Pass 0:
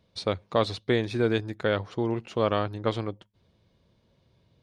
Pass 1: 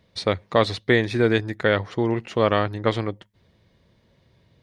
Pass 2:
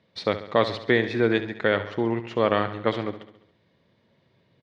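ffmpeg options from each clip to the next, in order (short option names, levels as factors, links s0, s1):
-af "equalizer=f=1900:w=4.4:g=8.5,volume=1.78"
-filter_complex "[0:a]highpass=140,lowpass=4300,asplit=2[s0][s1];[s1]aecho=0:1:69|138|207|276|345|414:0.237|0.133|0.0744|0.0416|0.0233|0.0131[s2];[s0][s2]amix=inputs=2:normalize=0,volume=0.794"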